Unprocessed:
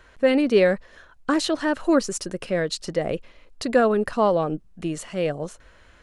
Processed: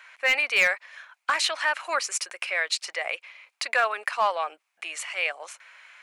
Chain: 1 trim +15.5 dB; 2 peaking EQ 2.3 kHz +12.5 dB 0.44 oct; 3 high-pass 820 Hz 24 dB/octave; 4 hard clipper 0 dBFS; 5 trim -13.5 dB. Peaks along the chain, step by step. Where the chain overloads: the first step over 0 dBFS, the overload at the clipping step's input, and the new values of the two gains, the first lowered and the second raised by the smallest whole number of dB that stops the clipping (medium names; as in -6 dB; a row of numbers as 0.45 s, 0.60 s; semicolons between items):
+9.5 dBFS, +10.0 dBFS, +6.5 dBFS, 0.0 dBFS, -13.5 dBFS; step 1, 6.5 dB; step 1 +8.5 dB, step 5 -6.5 dB